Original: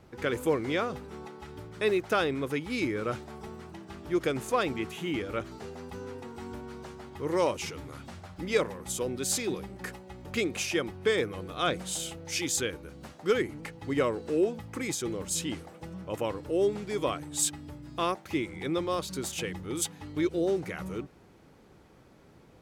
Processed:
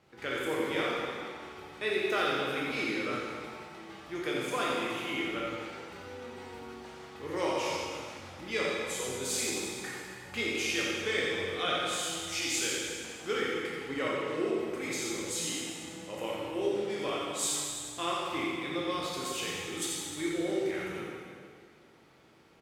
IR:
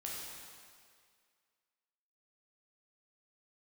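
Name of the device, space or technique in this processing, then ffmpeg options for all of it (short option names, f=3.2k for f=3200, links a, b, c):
PA in a hall: -filter_complex "[0:a]highpass=f=170:p=1,equalizer=f=2.8k:t=o:w=2:g=6,aecho=1:1:88:0.473[a];[1:a]atrim=start_sample=2205[b];[a][b]afir=irnorm=-1:irlink=0,volume=-3.5dB"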